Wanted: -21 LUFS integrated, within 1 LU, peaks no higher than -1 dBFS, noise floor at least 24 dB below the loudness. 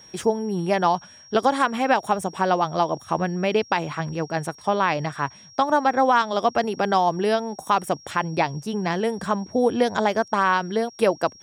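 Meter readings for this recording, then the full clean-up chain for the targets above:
steady tone 5600 Hz; tone level -46 dBFS; loudness -23.0 LUFS; peak -8.0 dBFS; loudness target -21.0 LUFS
-> notch 5600 Hz, Q 30; gain +2 dB

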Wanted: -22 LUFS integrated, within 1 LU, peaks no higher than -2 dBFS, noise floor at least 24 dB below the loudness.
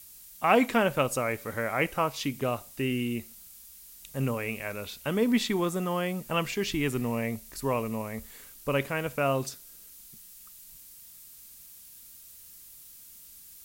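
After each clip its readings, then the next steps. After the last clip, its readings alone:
noise floor -50 dBFS; noise floor target -54 dBFS; loudness -29.5 LUFS; peak -8.0 dBFS; loudness target -22.0 LUFS
-> denoiser 6 dB, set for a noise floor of -50 dBFS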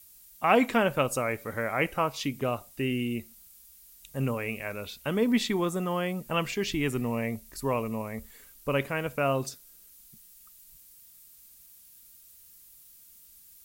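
noise floor -55 dBFS; loudness -29.5 LUFS; peak -8.0 dBFS; loudness target -22.0 LUFS
-> gain +7.5 dB; limiter -2 dBFS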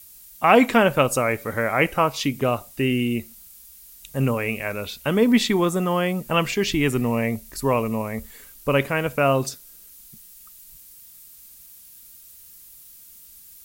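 loudness -22.0 LUFS; peak -2.0 dBFS; noise floor -47 dBFS

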